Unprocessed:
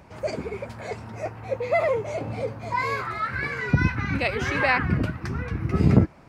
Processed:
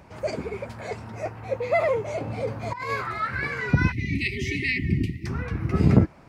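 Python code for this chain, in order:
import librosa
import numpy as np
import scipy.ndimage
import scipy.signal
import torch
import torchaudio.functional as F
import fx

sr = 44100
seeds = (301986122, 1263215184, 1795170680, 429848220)

y = fx.over_compress(x, sr, threshold_db=-29.0, ratio=-0.5, at=(2.47, 2.9))
y = fx.spec_erase(y, sr, start_s=3.92, length_s=1.34, low_hz=420.0, high_hz=1800.0)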